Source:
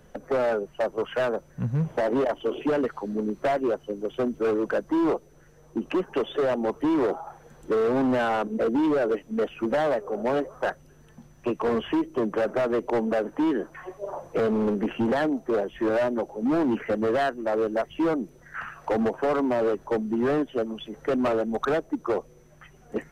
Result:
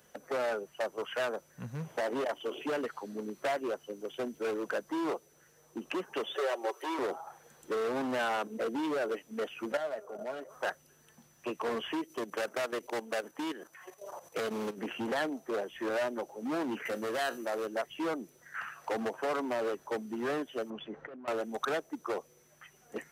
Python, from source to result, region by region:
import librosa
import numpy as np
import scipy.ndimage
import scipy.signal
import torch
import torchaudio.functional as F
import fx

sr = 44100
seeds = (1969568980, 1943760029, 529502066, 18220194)

y = fx.chain(x, sr, fx.highpass(hz=43.0, slope=12),
    fx.notch(hz=1200.0, q=6.4), at=(4.11, 4.57))
y = fx.chain(y, sr, fx.steep_highpass(hz=360.0, slope=36),
    fx.comb(ms=5.3, depth=0.59),
    fx.band_squash(depth_pct=40), at=(6.35, 6.99))
y = fx.chain(y, sr, fx.level_steps(step_db=11),
    fx.small_body(hz=(640.0, 1400.0), ring_ms=90, db=13), at=(9.72, 10.5))
y = fx.chain(y, sr, fx.high_shelf(hz=2400.0, db=8.0),
    fx.level_steps(step_db=12), at=(12.04, 14.78))
y = fx.chain(y, sr, fx.high_shelf(hz=5600.0, db=8.0),
    fx.comb_fb(f0_hz=59.0, decay_s=0.23, harmonics='all', damping=0.0, mix_pct=40),
    fx.env_flatten(amount_pct=50), at=(16.85, 17.66))
y = fx.chain(y, sr, fx.lowpass(hz=1700.0, slope=12),
    fx.over_compress(threshold_db=-33.0, ratio=-1.0), at=(20.7, 21.28))
y = scipy.signal.sosfilt(scipy.signal.butter(2, 56.0, 'highpass', fs=sr, output='sos'), y)
y = fx.tilt_eq(y, sr, slope=3.0)
y = F.gain(torch.from_numpy(y), -6.0).numpy()